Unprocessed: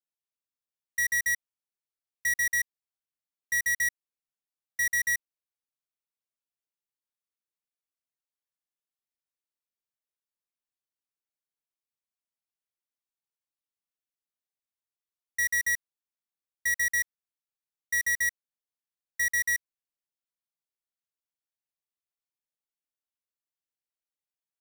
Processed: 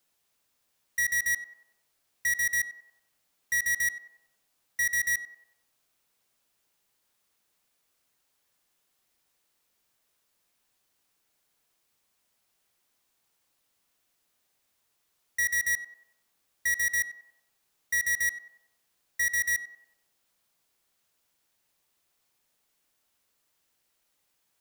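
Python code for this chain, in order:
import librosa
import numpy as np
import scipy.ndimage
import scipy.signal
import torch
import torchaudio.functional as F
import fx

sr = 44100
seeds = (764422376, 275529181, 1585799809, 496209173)

y = fx.power_curve(x, sr, exponent=0.7)
y = fx.echo_banded(y, sr, ms=94, feedback_pct=59, hz=690.0, wet_db=-7.5)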